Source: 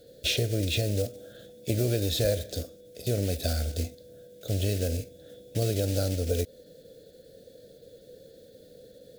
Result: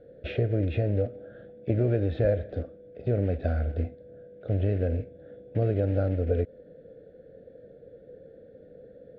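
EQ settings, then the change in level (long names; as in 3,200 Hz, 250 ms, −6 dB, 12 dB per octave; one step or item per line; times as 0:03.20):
low-pass filter 1,900 Hz 24 dB per octave
+2.0 dB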